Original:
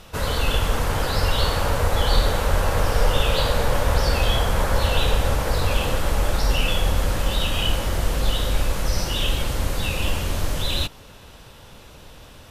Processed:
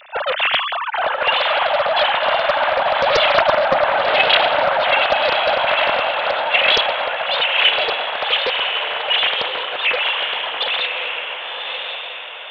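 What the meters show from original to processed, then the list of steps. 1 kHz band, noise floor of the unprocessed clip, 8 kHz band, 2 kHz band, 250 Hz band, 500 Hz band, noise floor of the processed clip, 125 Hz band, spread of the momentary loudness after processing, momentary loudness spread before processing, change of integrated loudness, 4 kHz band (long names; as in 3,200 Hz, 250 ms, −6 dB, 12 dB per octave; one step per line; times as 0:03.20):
+10.0 dB, −45 dBFS, below −15 dB, +11.5 dB, −9.0 dB, +7.5 dB, −29 dBFS, −21.5 dB, 9 LU, 4 LU, +6.0 dB, +9.0 dB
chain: three sine waves on the formant tracks
feedback delay with all-pass diffusion 1,071 ms, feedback 43%, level −4 dB
highs frequency-modulated by the lows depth 0.46 ms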